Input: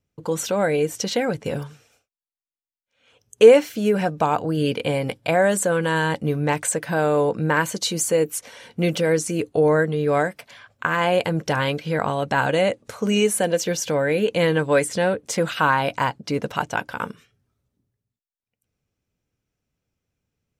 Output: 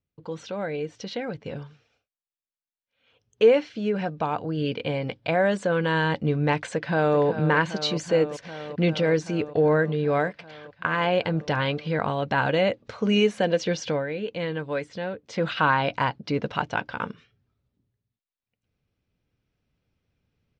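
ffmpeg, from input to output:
-filter_complex "[0:a]asplit=2[a][b];[b]afade=t=in:st=6.73:d=0.01,afade=t=out:st=7.19:d=0.01,aecho=0:1:390|780|1170|1560|1950|2340|2730|3120|3510|3900|4290|4680:0.281838|0.239563|0.203628|0.173084|0.147121|0.125053|0.106295|0.0903509|0.0767983|0.0652785|0.0554867|0.0471637[c];[a][c]amix=inputs=2:normalize=0,asplit=3[d][e][f];[d]atrim=end=14.07,asetpts=PTS-STARTPTS,afade=t=out:st=13.87:d=0.2:silence=0.375837[g];[e]atrim=start=14.07:end=15.27,asetpts=PTS-STARTPTS,volume=-8.5dB[h];[f]atrim=start=15.27,asetpts=PTS-STARTPTS,afade=t=in:d=0.2:silence=0.375837[i];[g][h][i]concat=n=3:v=0:a=1,lowpass=f=4.6k:w=0.5412,lowpass=f=4.6k:w=1.3066,equalizer=f=800:w=0.33:g=-2.5,dynaudnorm=f=730:g=5:m=13.5dB,volume=-7.5dB"

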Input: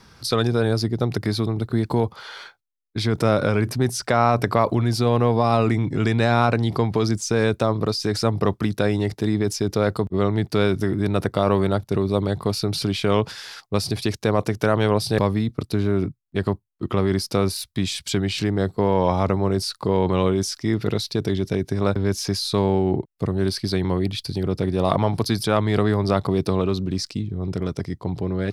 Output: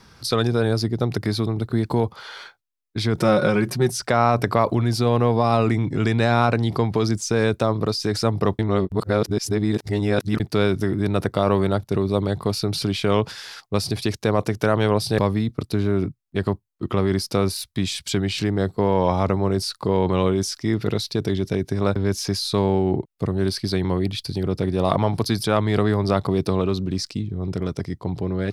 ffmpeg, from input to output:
-filter_complex "[0:a]asettb=1/sr,asplit=3[a][b][c];[a]atrim=end=3.164[d];[b]atrim=start=3.16:end=3.92,asetpts=PTS-STARTPTS,afade=t=in:d=0.004:c=qsin,afade=t=out:st=0.756:d=0.004:c=qsin,aecho=1:1:5.5:0.69,atrim=end_sample=33516[e];[c]atrim=start=3.916[f];[d][e]acrossfade=d=0.004:c1=hsin:c2=qsin[g];[g][f]acrossfade=d=0.004:c1=qsin:c2=hsin,asplit=3[h][i][j];[h]atrim=end=8.592[k];[i]atrim=start=8.588:end=10.402,asetpts=PTS-STARTPTS,areverse[l];[j]atrim=start=10.398[m];[k][l]acrossfade=d=0.004:c1=hsin:c2=hsin[n];[n][m]acrossfade=d=0.004:c1=hsin:c2=hsin"

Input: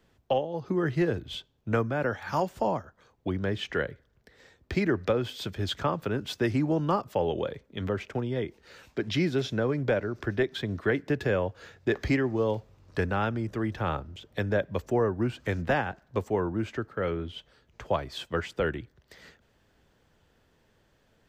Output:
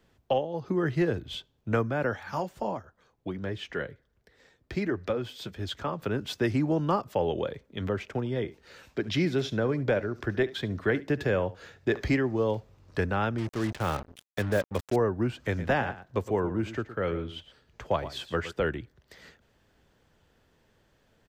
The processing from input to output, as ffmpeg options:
-filter_complex "[0:a]asplit=3[a][b][c];[a]afade=t=out:st=2.21:d=0.02[d];[b]flanger=delay=1.8:depth=5.5:regen=-54:speed=1.4:shape=triangular,afade=t=in:st=2.21:d=0.02,afade=t=out:st=5.99:d=0.02[e];[c]afade=t=in:st=5.99:d=0.02[f];[d][e][f]amix=inputs=3:normalize=0,asettb=1/sr,asplit=3[g][h][i];[g]atrim=end=8.184[j];[h]atrim=start=8.18:end=12.18,asetpts=PTS-STARTPTS,afade=t=in:d=0.004:c=qsin,afade=t=out:st=3.996:d=0.004:c=qsin,aecho=1:1:72:0.119,atrim=end_sample=176400[k];[i]atrim=start=12.176[l];[j][k]acrossfade=d=0.004:c1=hsin:c2=qsin[m];[m][l]acrossfade=d=0.004:c1=qsin:c2=hsin,asettb=1/sr,asplit=3[n][o][p];[n]atrim=end=13.384[q];[o]atrim=start=13.38:end=14.96,asetpts=PTS-STARTPTS,afade=t=in:d=0.004:c=qsin,afade=t=out:st=1.576:d=0.004:c=qsin,acrusher=bits=5:mix=0:aa=0.5[r];[p]atrim=start=14.956[s];[q][r]acrossfade=d=0.004:c1=hsin:c2=qsin[t];[t][s]acrossfade=d=0.004:c1=qsin:c2=hsin,asplit=3[u][v][w];[u]afade=t=out:st=15.52:d=0.02[x];[v]aecho=1:1:115:0.224,afade=t=in:st=15.52:d=0.02,afade=t=out:st=18.51:d=0.02[y];[w]afade=t=in:st=18.51:d=0.02[z];[x][y][z]amix=inputs=3:normalize=0"

